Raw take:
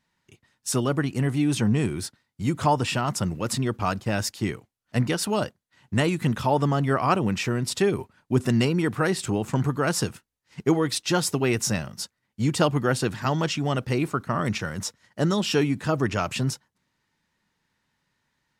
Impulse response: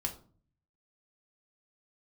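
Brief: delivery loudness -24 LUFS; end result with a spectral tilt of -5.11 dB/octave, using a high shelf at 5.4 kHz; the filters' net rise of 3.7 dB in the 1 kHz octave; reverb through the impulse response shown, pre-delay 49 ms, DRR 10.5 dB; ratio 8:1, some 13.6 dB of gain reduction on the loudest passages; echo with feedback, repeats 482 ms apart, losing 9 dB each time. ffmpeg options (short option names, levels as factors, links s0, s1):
-filter_complex "[0:a]equalizer=f=1000:t=o:g=5,highshelf=f=5400:g=-5.5,acompressor=threshold=0.0398:ratio=8,aecho=1:1:482|964|1446|1928:0.355|0.124|0.0435|0.0152,asplit=2[s0][s1];[1:a]atrim=start_sample=2205,adelay=49[s2];[s1][s2]afir=irnorm=-1:irlink=0,volume=0.251[s3];[s0][s3]amix=inputs=2:normalize=0,volume=2.66"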